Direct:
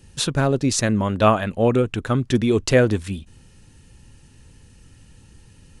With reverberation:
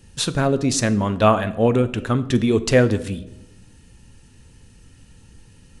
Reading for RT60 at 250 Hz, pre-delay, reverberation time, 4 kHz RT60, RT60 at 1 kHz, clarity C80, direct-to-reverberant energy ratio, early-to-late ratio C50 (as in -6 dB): 1.3 s, 4 ms, 0.95 s, 0.60 s, 0.80 s, 19.0 dB, 11.0 dB, 16.5 dB